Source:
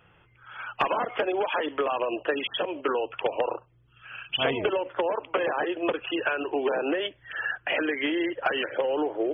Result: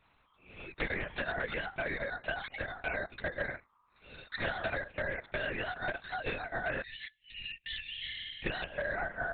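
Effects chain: ring modulator 1100 Hz; 6.82–8.43 spectral delete 220–1700 Hz; 7.82–8.47 flutter echo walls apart 8.8 m, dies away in 1.4 s; LPC vocoder at 8 kHz whisper; gain -6 dB

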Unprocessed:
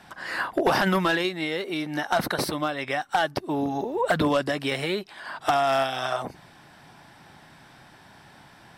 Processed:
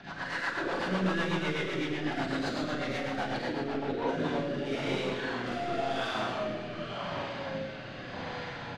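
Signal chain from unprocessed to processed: nonlinear frequency compression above 3600 Hz 1.5:1; LPF 5300 Hz 24 dB/oct; comb 7.1 ms, depth 34%; in parallel at -1.5 dB: limiter -21.5 dBFS, peak gain reduction 10 dB; on the sum: compressor 2.5:1, threshold -38 dBFS, peak gain reduction 15.5 dB; echoes that change speed 0.134 s, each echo -2 st, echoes 3, each echo -6 dB; soft clip -32.5 dBFS, distortion -11 dB; Schroeder reverb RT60 1.5 s, combs from 33 ms, DRR -6.5 dB; rotary speaker horn 8 Hz, later 0.9 Hz, at 3.61

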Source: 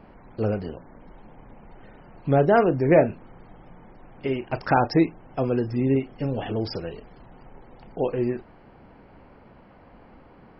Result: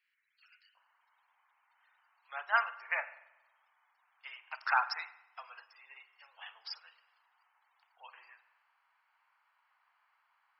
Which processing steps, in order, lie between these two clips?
steep high-pass 1800 Hz 36 dB/oct, from 0.74 s 1000 Hz; spring tank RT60 1.2 s, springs 45 ms, chirp 65 ms, DRR 9 dB; upward expander 1.5:1, over -52 dBFS

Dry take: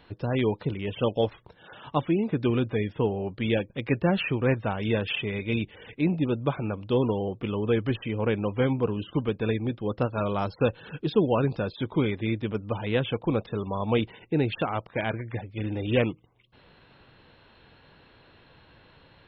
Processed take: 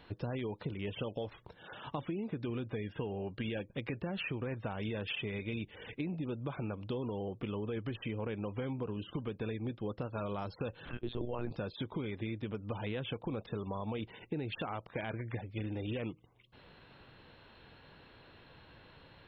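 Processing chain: limiter -19.5 dBFS, peak gain reduction 9 dB; compressor, threshold -33 dBFS, peak gain reduction 9.5 dB; 2.84–3.56 small resonant body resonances 1600/2800 Hz, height 15 dB -> 12 dB; 10.85–11.51 monotone LPC vocoder at 8 kHz 120 Hz; gain -2 dB

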